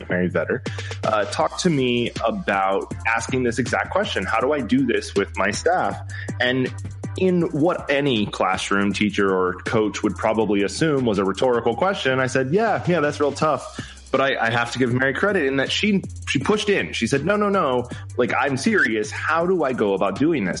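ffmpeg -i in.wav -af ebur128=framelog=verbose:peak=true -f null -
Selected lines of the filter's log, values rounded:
Integrated loudness:
  I:         -21.0 LUFS
  Threshold: -31.1 LUFS
Loudness range:
  LRA:         1.5 LU
  Threshold: -41.0 LUFS
  LRA low:   -21.9 LUFS
  LRA high:  -20.4 LUFS
True peak:
  Peak:       -5.9 dBFS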